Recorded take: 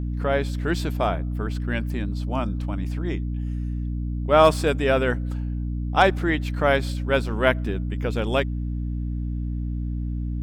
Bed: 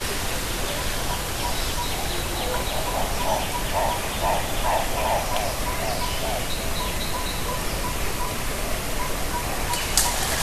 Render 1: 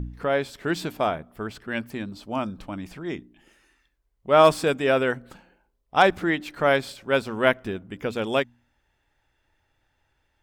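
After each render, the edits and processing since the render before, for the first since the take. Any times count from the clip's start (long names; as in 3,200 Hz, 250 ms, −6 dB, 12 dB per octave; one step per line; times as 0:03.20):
hum removal 60 Hz, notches 5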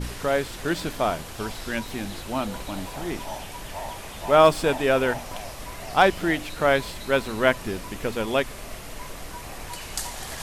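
mix in bed −11 dB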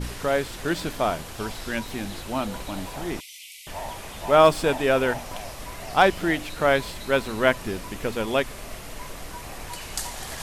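0:03.20–0:03.67: Chebyshev high-pass filter 2,000 Hz, order 10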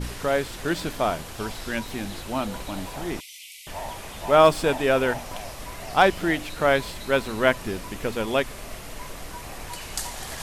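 no processing that can be heard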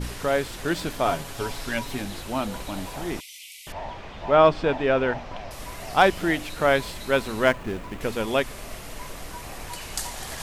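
0:01.05–0:02.02: comb filter 7.2 ms, depth 59%
0:03.72–0:05.51: high-frequency loss of the air 200 metres
0:07.45–0:08.01: running median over 9 samples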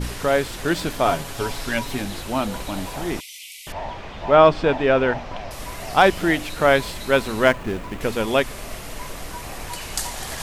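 level +4 dB
brickwall limiter −2 dBFS, peak gain reduction 2 dB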